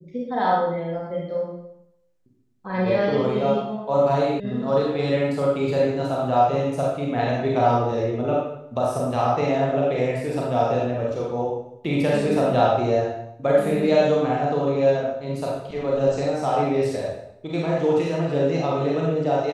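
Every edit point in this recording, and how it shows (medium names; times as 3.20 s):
4.40 s: sound stops dead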